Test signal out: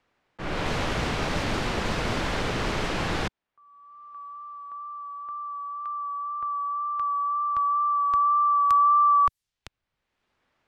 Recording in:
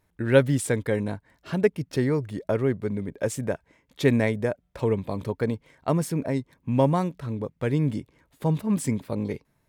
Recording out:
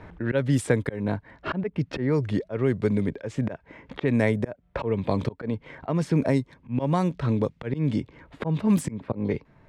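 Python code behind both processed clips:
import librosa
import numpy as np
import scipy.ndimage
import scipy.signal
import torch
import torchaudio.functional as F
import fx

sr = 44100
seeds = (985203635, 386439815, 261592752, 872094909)

y = fx.wow_flutter(x, sr, seeds[0], rate_hz=2.1, depth_cents=18.0)
y = fx.auto_swell(y, sr, attack_ms=321.0)
y = fx.env_lowpass(y, sr, base_hz=2000.0, full_db=-21.0)
y = fx.band_squash(y, sr, depth_pct=70)
y = F.gain(torch.from_numpy(y), 6.0).numpy()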